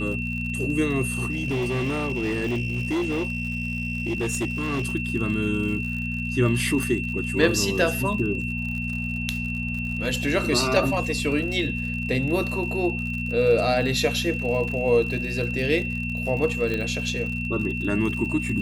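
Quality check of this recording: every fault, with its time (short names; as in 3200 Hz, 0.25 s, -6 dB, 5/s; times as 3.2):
crackle 69/s -32 dBFS
hum 60 Hz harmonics 4 -30 dBFS
tone 2700 Hz -30 dBFS
1.3–4.94 clipped -21.5 dBFS
6.83 pop -14 dBFS
16.74 pop -16 dBFS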